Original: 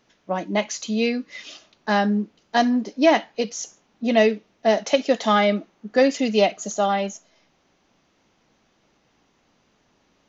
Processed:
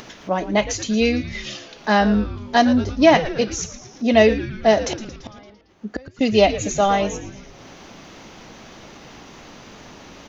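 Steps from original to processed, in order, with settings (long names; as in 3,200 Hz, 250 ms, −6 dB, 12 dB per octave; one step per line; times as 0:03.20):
upward compression, threshold −29 dBFS
0:04.81–0:06.21: gate with flip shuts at −16 dBFS, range −32 dB
echo with shifted repeats 113 ms, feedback 61%, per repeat −150 Hz, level −13 dB
level +3.5 dB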